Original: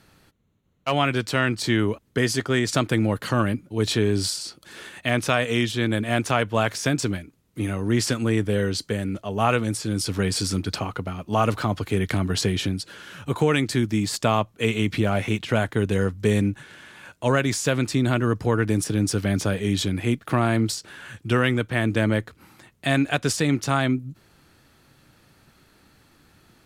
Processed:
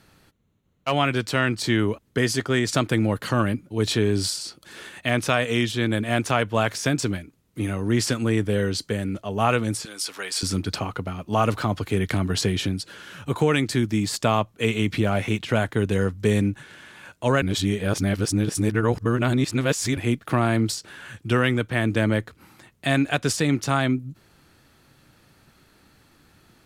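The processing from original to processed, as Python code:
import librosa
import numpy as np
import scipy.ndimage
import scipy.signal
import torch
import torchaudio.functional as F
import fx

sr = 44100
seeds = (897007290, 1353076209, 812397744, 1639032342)

y = fx.highpass(x, sr, hz=790.0, slope=12, at=(9.85, 10.43))
y = fx.edit(y, sr, fx.reverse_span(start_s=17.42, length_s=2.55), tone=tone)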